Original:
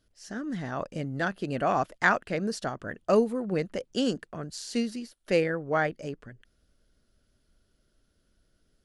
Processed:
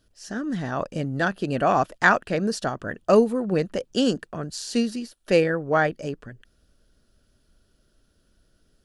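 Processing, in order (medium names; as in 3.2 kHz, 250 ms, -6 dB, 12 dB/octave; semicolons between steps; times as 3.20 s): band-stop 2.1 kHz, Q 10; trim +5.5 dB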